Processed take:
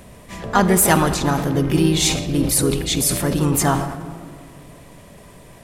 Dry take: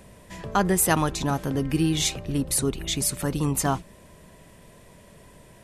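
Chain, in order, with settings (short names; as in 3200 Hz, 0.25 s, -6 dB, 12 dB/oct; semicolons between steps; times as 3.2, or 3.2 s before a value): harmoniser +3 st -7 dB; on a send at -11 dB: reverb RT60 2.3 s, pre-delay 42 ms; on the sum: sustainer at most 60 dB/s; gain +5 dB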